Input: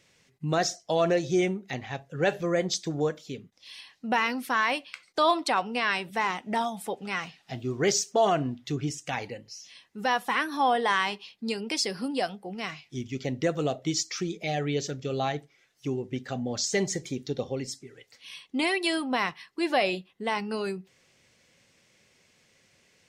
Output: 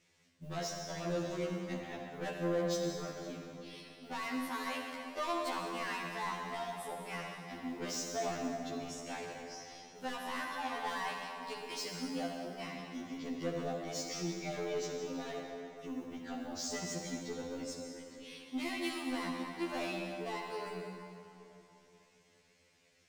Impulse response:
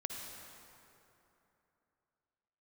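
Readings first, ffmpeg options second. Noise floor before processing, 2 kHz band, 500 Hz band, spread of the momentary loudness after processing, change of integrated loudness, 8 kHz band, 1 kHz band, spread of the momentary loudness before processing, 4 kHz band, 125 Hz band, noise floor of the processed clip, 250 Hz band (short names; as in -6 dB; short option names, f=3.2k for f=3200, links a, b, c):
-65 dBFS, -12.0 dB, -10.5 dB, 9 LU, -11.0 dB, -10.0 dB, -11.5 dB, 14 LU, -11.0 dB, -11.5 dB, -68 dBFS, -8.5 dB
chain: -filter_complex "[0:a]acrusher=bits=7:mode=log:mix=0:aa=0.000001,asoftclip=type=tanh:threshold=-28dB[a];[1:a]atrim=start_sample=2205[b];[a][b]afir=irnorm=-1:irlink=0,afftfilt=real='re*2*eq(mod(b,4),0)':imag='im*2*eq(mod(b,4),0)':win_size=2048:overlap=0.75,volume=-3.5dB"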